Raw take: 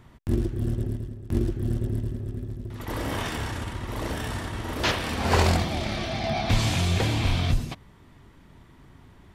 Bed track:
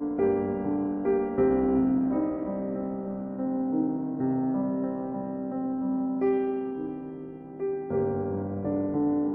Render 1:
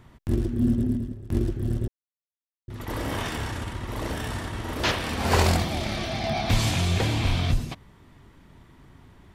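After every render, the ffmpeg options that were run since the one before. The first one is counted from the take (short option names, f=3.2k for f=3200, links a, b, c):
-filter_complex "[0:a]asettb=1/sr,asplit=3[a][b][c];[a]atrim=end=0.474[d];[b]atrim=start=0.47:end=1.12,asetpts=PTS-STARTPTS,afade=t=in:d=0.004:c=qsin,afade=t=out:st=0.646:d=0.004:c=qsin,equalizer=f=240:w=5.1:g=15[e];[c]atrim=start=1.116[f];[d][e]acrossfade=d=0.004:c1=hsin:c2=qsin[g];[g][f]acrossfade=d=0.004:c1=qsin:c2=hsin,asettb=1/sr,asplit=3[h][i][j];[h]atrim=end=5.194[k];[i]atrim=start=5.19:end=6.71,asetpts=PTS-STARTPTS,afade=t=in:d=0.004:c=qsin,afade=t=out:st=1.516:d=0.004:c=qsin,highshelf=f=9.4k:g=7.5[l];[j]atrim=start=6.706[m];[k][l]acrossfade=d=0.004:c1=hsin:c2=qsin[n];[n][m]acrossfade=d=0.004:c1=qsin:c2=hsin,asplit=3[o][p][q];[o]atrim=end=1.88,asetpts=PTS-STARTPTS,afade=t=out:st=1.876:d=0.004:c=hsin[r];[p]atrim=start=1.88:end=2.68,asetpts=PTS-STARTPTS,volume=0[s];[q]atrim=start=2.68,asetpts=PTS-STARTPTS,afade=t=in:d=0.004:c=hsin[t];[r][s][t]concat=n=3:v=0:a=1"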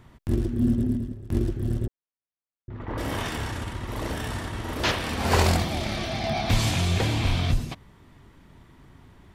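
-filter_complex "[0:a]asettb=1/sr,asplit=3[a][b][c];[a]atrim=end=1.864[d];[b]atrim=start=1.86:end=2.98,asetpts=PTS-STARTPTS,afade=t=in:d=0.004:c=qsin,afade=t=out:st=1.116:d=0.004:c=qsin,lowpass=1.8k[e];[c]atrim=start=2.976[f];[d][e]acrossfade=d=0.004:c1=hsin:c2=qsin[g];[g][f]acrossfade=d=0.004:c1=qsin:c2=hsin"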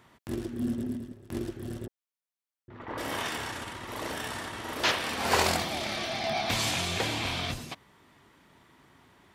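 -af "highpass=f=290:p=1,lowshelf=f=470:g=-4.5"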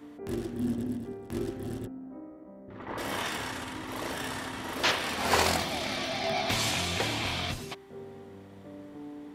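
-filter_complex "[1:a]volume=-17.5dB[a];[0:a][a]amix=inputs=2:normalize=0"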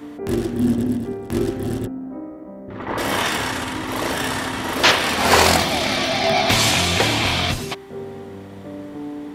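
-af "volume=12dB,alimiter=limit=-1dB:level=0:latency=1"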